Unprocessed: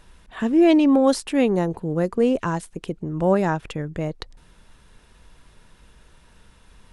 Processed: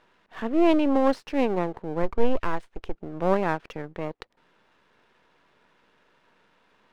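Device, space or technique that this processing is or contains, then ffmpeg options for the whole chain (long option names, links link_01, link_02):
crystal radio: -filter_complex "[0:a]highpass=300,lowpass=2600,aeval=exprs='if(lt(val(0),0),0.251*val(0),val(0))':channel_layout=same,asplit=3[link_01][link_02][link_03];[link_01]afade=type=out:start_time=2.02:duration=0.02[link_04];[link_02]asubboost=boost=7.5:cutoff=59,afade=type=in:start_time=2.02:duration=0.02,afade=type=out:start_time=2.94:duration=0.02[link_05];[link_03]afade=type=in:start_time=2.94:duration=0.02[link_06];[link_04][link_05][link_06]amix=inputs=3:normalize=0"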